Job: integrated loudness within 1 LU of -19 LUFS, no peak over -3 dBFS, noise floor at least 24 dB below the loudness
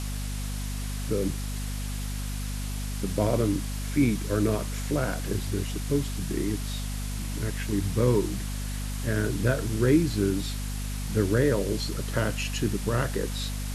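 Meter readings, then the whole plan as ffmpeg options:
hum 50 Hz; highest harmonic 250 Hz; hum level -30 dBFS; noise floor -32 dBFS; noise floor target -53 dBFS; loudness -28.5 LUFS; peak level -10.5 dBFS; loudness target -19.0 LUFS
-> -af "bandreject=f=50:t=h:w=4,bandreject=f=100:t=h:w=4,bandreject=f=150:t=h:w=4,bandreject=f=200:t=h:w=4,bandreject=f=250:t=h:w=4"
-af "afftdn=nr=21:nf=-32"
-af "volume=2.99,alimiter=limit=0.708:level=0:latency=1"

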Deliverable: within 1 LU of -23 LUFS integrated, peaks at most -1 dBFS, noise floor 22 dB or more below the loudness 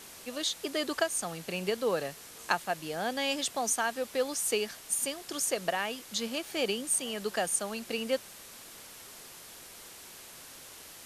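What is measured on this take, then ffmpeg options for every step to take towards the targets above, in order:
noise floor -49 dBFS; noise floor target -54 dBFS; loudness -31.5 LUFS; peak level -10.5 dBFS; loudness target -23.0 LUFS
-> -af "afftdn=nr=6:nf=-49"
-af "volume=2.66"

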